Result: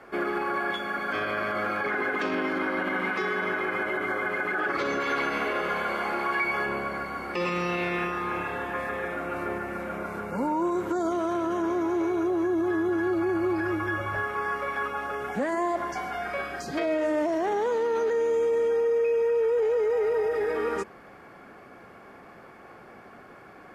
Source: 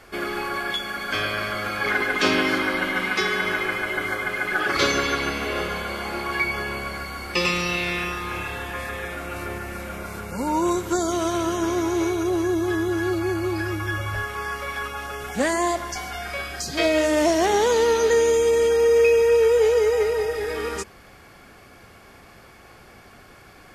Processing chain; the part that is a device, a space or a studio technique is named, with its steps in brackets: DJ mixer with the lows and highs turned down (three-band isolator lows -16 dB, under 150 Hz, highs -16 dB, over 2000 Hz; limiter -21.5 dBFS, peak gain reduction 11.5 dB); 5–6.66 tilt shelf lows -4 dB, about 690 Hz; gain +2 dB

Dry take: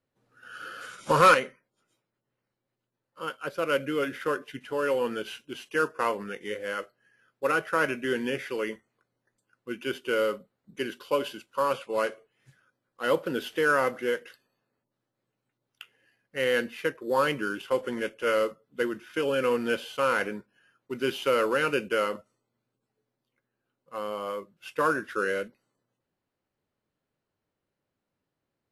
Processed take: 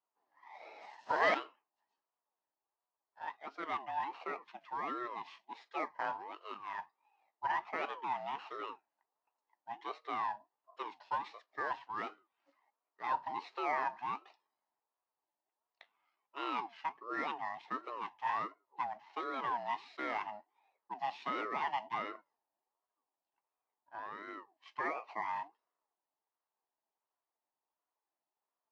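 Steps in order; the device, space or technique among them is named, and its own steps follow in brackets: 21.98–24.12 air absorption 50 m; voice changer toy (ring modulator with a swept carrier 640 Hz, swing 35%, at 1.4 Hz; speaker cabinet 470–4600 Hz, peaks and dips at 540 Hz -5 dB, 880 Hz +5 dB, 1400 Hz -5 dB, 2300 Hz -8 dB, 3500 Hz -9 dB); gain -5.5 dB

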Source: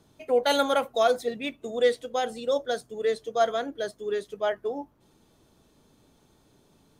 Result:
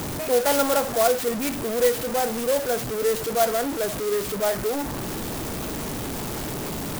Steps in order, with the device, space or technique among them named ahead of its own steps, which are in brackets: early CD player with a faulty converter (zero-crossing step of -24 dBFS; clock jitter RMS 0.079 ms)

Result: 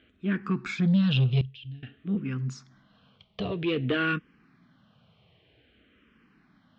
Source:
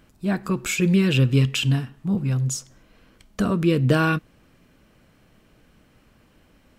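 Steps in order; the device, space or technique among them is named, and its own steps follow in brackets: barber-pole phaser into a guitar amplifier (endless phaser -0.52 Hz; soft clip -16 dBFS, distortion -17 dB; speaker cabinet 93–3900 Hz, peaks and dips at 330 Hz -4 dB, 550 Hz -6 dB, 920 Hz -5 dB, 3300 Hz +6 dB); 1.41–1.83 passive tone stack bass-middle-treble 10-0-1

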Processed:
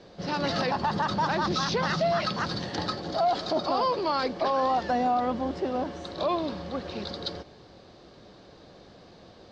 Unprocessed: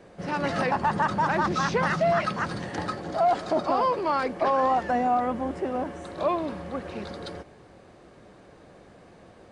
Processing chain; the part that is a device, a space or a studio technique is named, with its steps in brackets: LPF 5000 Hz 24 dB/oct; over-bright horn tweeter (resonant high shelf 3100 Hz +9.5 dB, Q 1.5; limiter -17.5 dBFS, peak gain reduction 5.5 dB)

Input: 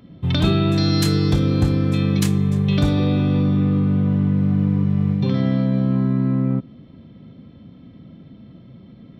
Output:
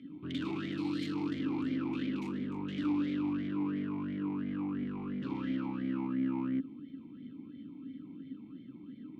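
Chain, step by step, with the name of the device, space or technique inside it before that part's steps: talk box (tube stage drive 31 dB, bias 0.6; vowel sweep i-u 2.9 Hz); gain +9 dB

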